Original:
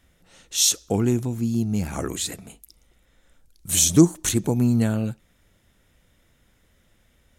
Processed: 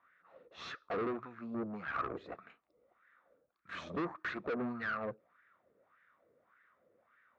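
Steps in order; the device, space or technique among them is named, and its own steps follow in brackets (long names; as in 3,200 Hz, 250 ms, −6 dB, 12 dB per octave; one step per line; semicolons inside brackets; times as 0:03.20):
wah-wah guitar rig (LFO wah 1.7 Hz 460–1,700 Hz, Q 4.9; tube saturation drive 44 dB, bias 0.7; loudspeaker in its box 83–3,500 Hz, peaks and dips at 850 Hz −6 dB, 1,200 Hz +8 dB, 3,100 Hz −8 dB)
level +10.5 dB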